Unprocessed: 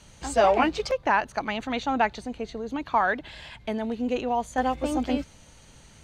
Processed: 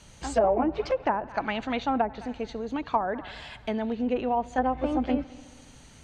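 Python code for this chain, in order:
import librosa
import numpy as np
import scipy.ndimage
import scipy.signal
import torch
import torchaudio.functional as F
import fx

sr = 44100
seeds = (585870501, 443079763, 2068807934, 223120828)

y = fx.echo_heads(x, sr, ms=69, heads='first and third', feedback_pct=56, wet_db=-24)
y = fx.env_lowpass_down(y, sr, base_hz=650.0, full_db=-18.0)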